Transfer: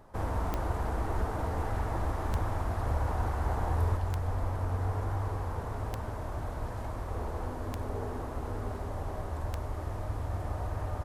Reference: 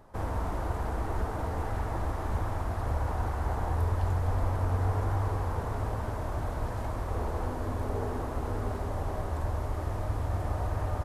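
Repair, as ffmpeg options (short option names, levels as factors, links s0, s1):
-af "adeclick=t=4,asetnsamples=n=441:p=0,asendcmd='3.97 volume volume 3.5dB',volume=1"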